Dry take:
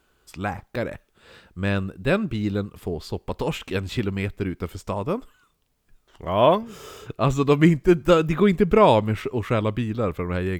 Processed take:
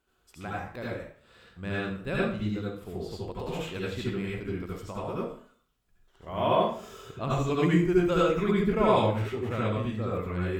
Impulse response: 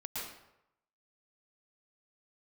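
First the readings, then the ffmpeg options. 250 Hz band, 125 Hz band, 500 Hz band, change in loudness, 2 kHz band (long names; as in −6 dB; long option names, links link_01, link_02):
−6.0 dB, −6.0 dB, −6.5 dB, −6.0 dB, −5.5 dB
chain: -filter_complex "[1:a]atrim=start_sample=2205,asetrate=70560,aresample=44100[link_01];[0:a][link_01]afir=irnorm=-1:irlink=0,volume=-3dB"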